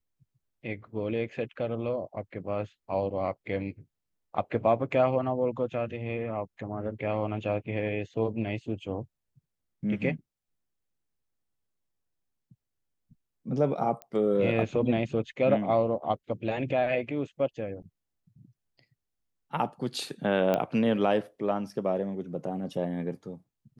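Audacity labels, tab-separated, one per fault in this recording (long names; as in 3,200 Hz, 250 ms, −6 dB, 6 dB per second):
14.020000	14.020000	click −24 dBFS
20.540000	20.540000	click −14 dBFS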